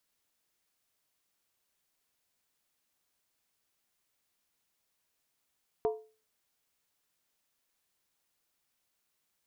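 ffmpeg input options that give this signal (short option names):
-f lavfi -i "aevalsrc='0.0668*pow(10,-3*t/0.36)*sin(2*PI*436*t)+0.0299*pow(10,-3*t/0.285)*sin(2*PI*695*t)+0.0133*pow(10,-3*t/0.246)*sin(2*PI*931.3*t)+0.00596*pow(10,-3*t/0.238)*sin(2*PI*1001.1*t)+0.00266*pow(10,-3*t/0.221)*sin(2*PI*1156.7*t)':d=0.63:s=44100"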